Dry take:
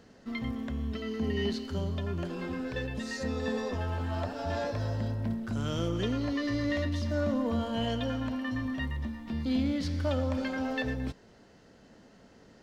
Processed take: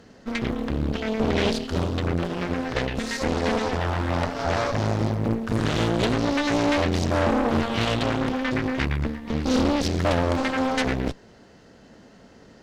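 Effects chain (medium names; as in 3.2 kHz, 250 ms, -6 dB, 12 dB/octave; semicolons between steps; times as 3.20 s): Chebyshev shaper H 6 -11 dB, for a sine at -17.5 dBFS; loudspeaker Doppler distortion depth 0.7 ms; trim +6.5 dB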